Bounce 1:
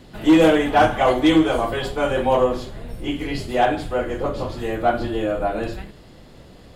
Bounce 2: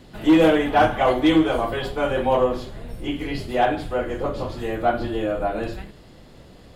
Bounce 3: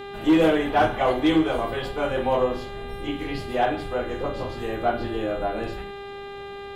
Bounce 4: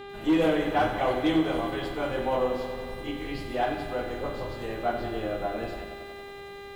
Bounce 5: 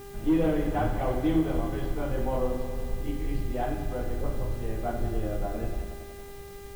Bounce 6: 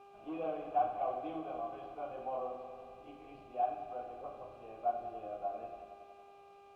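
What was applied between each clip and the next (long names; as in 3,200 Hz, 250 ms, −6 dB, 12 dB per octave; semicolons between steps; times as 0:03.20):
dynamic equaliser 7,400 Hz, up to −6 dB, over −47 dBFS, Q 1.3; level −1.5 dB
hum with harmonics 400 Hz, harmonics 10, −34 dBFS −6 dB per octave; level −3 dB
feedback echo at a low word length 93 ms, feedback 80%, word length 8 bits, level −10 dB; level −5 dB
RIAA equalisation playback; bit-depth reduction 8 bits, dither triangular; level −6 dB
formant filter a; level +1.5 dB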